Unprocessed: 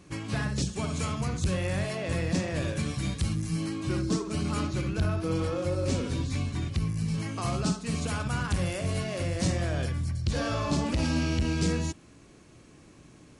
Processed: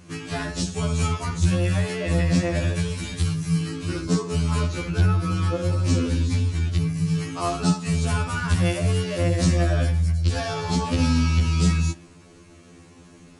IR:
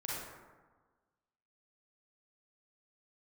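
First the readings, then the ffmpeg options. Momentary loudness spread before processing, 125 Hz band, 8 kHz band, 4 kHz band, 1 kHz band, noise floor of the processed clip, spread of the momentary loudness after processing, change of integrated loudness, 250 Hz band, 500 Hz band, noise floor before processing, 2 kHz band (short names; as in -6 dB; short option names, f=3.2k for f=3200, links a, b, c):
4 LU, +7.5 dB, +4.5 dB, +5.0 dB, +5.5 dB, -49 dBFS, 6 LU, +6.5 dB, +5.5 dB, +4.0 dB, -54 dBFS, +5.0 dB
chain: -filter_complex "[0:a]acontrast=88,asplit=2[a][b];[1:a]atrim=start_sample=2205,lowpass=5.4k,lowshelf=f=260:g=-10[c];[b][c]afir=irnorm=-1:irlink=0,volume=-20.5dB[d];[a][d]amix=inputs=2:normalize=0,afftfilt=real='re*2*eq(mod(b,4),0)':imag='im*2*eq(mod(b,4),0)':win_size=2048:overlap=0.75"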